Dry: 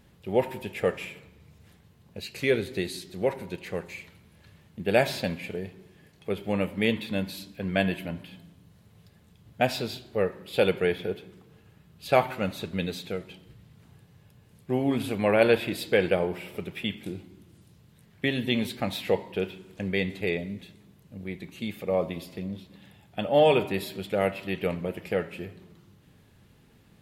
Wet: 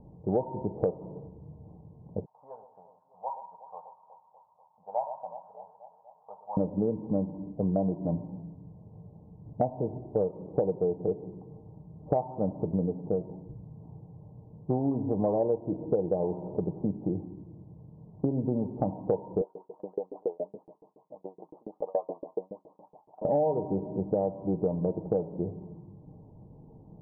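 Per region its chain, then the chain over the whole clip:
0:02.25–0:06.57: elliptic band-pass filter 880–7,700 Hz + delay that swaps between a low-pass and a high-pass 122 ms, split 1,200 Hz, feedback 80%, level −12 dB
0:19.41–0:23.25: downward compressor 2.5 to 1, threshold −35 dBFS + auto-filter high-pass saw up 7.1 Hz 400–3,000 Hz
whole clip: Butterworth low-pass 960 Hz 72 dB per octave; comb filter 6.5 ms, depth 32%; downward compressor 8 to 1, threshold −31 dBFS; level +7 dB

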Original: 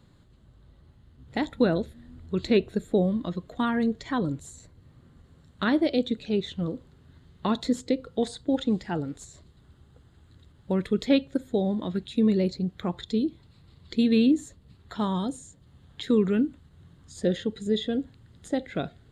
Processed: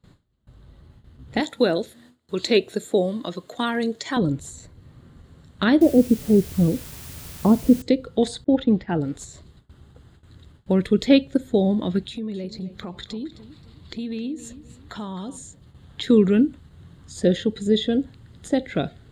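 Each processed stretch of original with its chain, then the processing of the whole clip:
0:01.40–0:04.17: high-pass filter 92 Hz 24 dB per octave + bass and treble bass −13 dB, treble +8 dB
0:05.81–0:07.82: inverse Chebyshev low-pass filter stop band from 3,500 Hz, stop band 60 dB + bit-depth reduction 8 bits, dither triangular + low-shelf EQ 270 Hz +7 dB
0:08.44–0:09.01: low-pass filter 2,600 Hz + downward expander −41 dBFS
0:12.08–0:15.37: downward compressor 3 to 1, threshold −39 dBFS + feedback echo with a swinging delay time 264 ms, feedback 35%, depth 80 cents, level −14.5 dB
whole clip: noise gate with hold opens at −47 dBFS; dynamic equaliser 1,100 Hz, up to −5 dB, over −42 dBFS, Q 1.5; level +6.5 dB

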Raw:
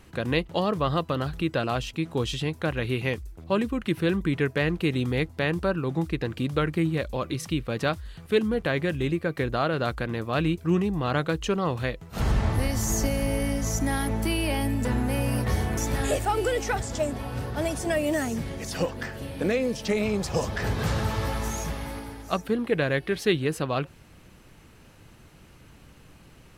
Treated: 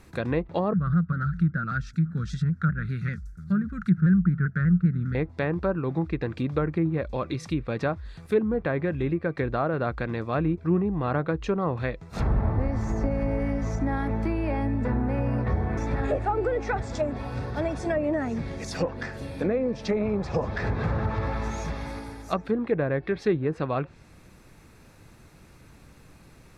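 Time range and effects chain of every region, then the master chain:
0:00.73–0:05.15: drawn EQ curve 120 Hz 0 dB, 180 Hz +12 dB, 280 Hz −13 dB, 970 Hz −26 dB, 1,400 Hz +10 dB, 2,600 Hz −17 dB, 5,800 Hz −1 dB + pitch modulation by a square or saw wave saw down 5.1 Hz, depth 100 cents
whole clip: treble cut that deepens with the level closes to 1,200 Hz, closed at −20.5 dBFS; notch filter 3,000 Hz, Q 5.4

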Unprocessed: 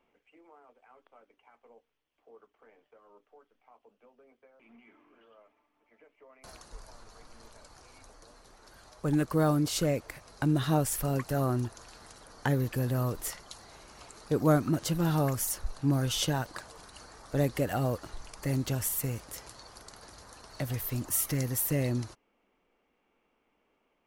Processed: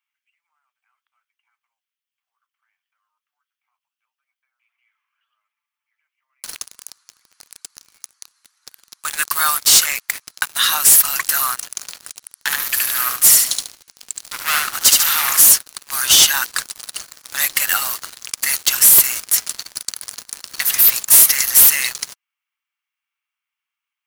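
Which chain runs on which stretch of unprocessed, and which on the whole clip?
0:12.10–0:15.41: hard clipping −28 dBFS + repeating echo 72 ms, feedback 37%, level −3 dB + multiband upward and downward expander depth 40%
whole clip: inverse Chebyshev high-pass filter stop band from 440 Hz, stop band 50 dB; spectral tilt +3.5 dB per octave; leveller curve on the samples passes 5

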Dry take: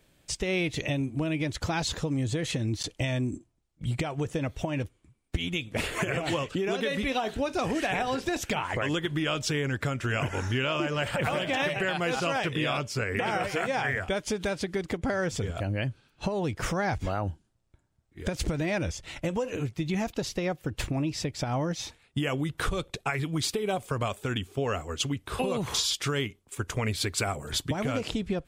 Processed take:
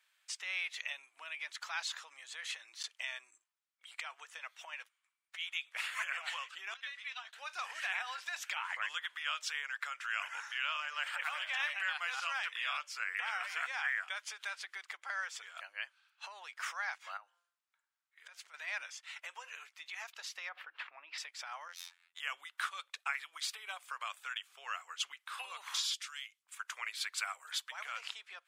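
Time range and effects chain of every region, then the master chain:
0:06.74–0:07.33: downward expander −25 dBFS + low-pass filter 7,500 Hz + parametric band 320 Hz −14 dB 2.3 octaves
0:17.17–0:18.54: hum removal 173.2 Hz, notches 10 + downward compressor 3 to 1, threshold −40 dBFS
0:20.49–0:21.18: high-frequency loss of the air 420 metres + envelope flattener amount 70%
0:21.68–0:22.20: phase distortion by the signal itself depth 0.12 ms + phases set to zero 86.9 Hz
0:25.94–0:26.43: resonant band-pass 7,200 Hz, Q 0.65 + multiband upward and downward compressor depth 40%
whole clip: inverse Chebyshev high-pass filter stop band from 200 Hz, stop band 80 dB; high-shelf EQ 3,200 Hz −9 dB; level −1.5 dB

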